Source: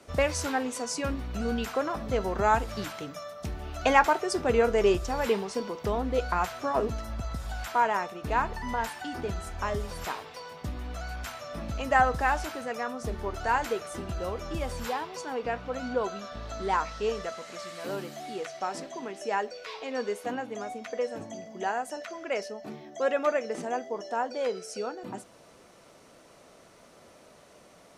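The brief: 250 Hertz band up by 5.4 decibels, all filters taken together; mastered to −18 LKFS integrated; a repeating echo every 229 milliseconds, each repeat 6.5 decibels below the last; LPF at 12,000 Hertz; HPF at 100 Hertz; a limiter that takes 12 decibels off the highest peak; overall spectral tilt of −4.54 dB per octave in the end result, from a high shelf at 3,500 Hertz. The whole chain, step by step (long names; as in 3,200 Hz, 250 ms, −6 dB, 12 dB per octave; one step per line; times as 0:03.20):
high-pass filter 100 Hz
low-pass filter 12,000 Hz
parametric band 250 Hz +6.5 dB
high-shelf EQ 3,500 Hz −4 dB
brickwall limiter −18.5 dBFS
repeating echo 229 ms, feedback 47%, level −6.5 dB
level +12.5 dB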